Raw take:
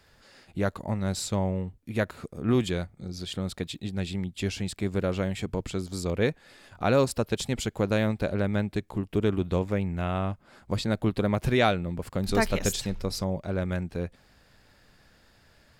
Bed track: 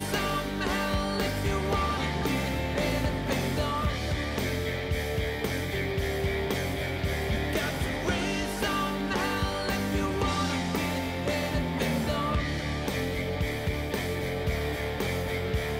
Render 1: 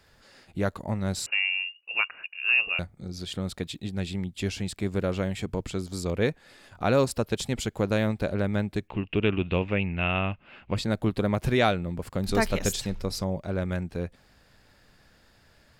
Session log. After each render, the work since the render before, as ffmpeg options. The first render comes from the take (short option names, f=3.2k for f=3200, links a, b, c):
-filter_complex "[0:a]asettb=1/sr,asplit=3[a][b][c];[a]atrim=end=1.264[d];[b]atrim=start=1.26:end=2.79,asetpts=PTS-STARTPTS,afade=t=in:d=0.004:c=qsin,afade=t=out:st=1.526:d=0.004:c=qsin,lowpass=f=2.5k:t=q:w=0.5098,lowpass=f=2.5k:t=q:w=0.6013,lowpass=f=2.5k:t=q:w=0.9,lowpass=f=2.5k:t=q:w=2.563,afreqshift=-2900[e];[c]atrim=start=2.786[f];[d][e]acrossfade=d=0.004:c1=hsin:c2=qsin[g];[g][f]acrossfade=d=0.004:c1=qsin:c2=hsin,asplit=3[h][i][j];[h]afade=t=out:st=8.87:d=0.02[k];[i]lowpass=f=2.7k:t=q:w=8.6,afade=t=in:st=8.87:d=0.02,afade=t=out:st=10.75:d=0.02[l];[j]afade=t=in:st=10.75:d=0.02[m];[k][l][m]amix=inputs=3:normalize=0"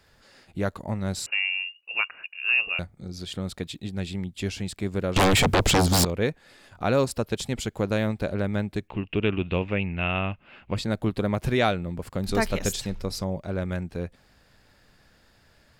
-filter_complex "[0:a]asettb=1/sr,asplit=3[a][b][c];[a]atrim=end=5.164[d];[b]atrim=start=5.16:end=6.05,asetpts=PTS-STARTPTS,afade=t=in:d=0.004:c=qsin,afade=t=out:st=0.886:d=0.004:c=qsin,aeval=exprs='0.168*sin(PI/2*7.08*val(0)/0.168)':c=same[e];[c]atrim=start=6.046[f];[d][e]acrossfade=d=0.004:c1=hsin:c2=qsin[g];[g][f]acrossfade=d=0.004:c1=qsin:c2=hsin"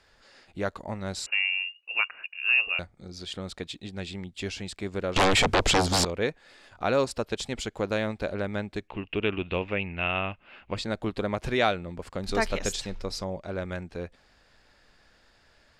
-af "lowpass=7.5k,equalizer=f=130:t=o:w=2.1:g=-8.5"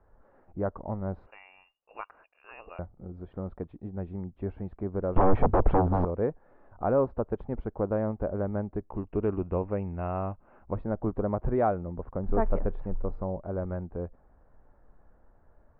-af "lowpass=f=1.1k:w=0.5412,lowpass=f=1.1k:w=1.3066,lowshelf=f=63:g=10"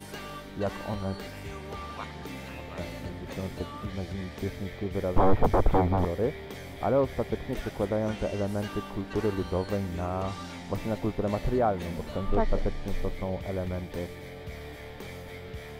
-filter_complex "[1:a]volume=-11.5dB[a];[0:a][a]amix=inputs=2:normalize=0"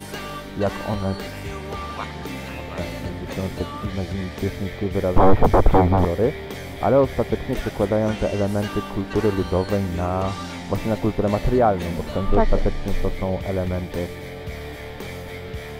-af "volume=8dB,alimiter=limit=-3dB:level=0:latency=1"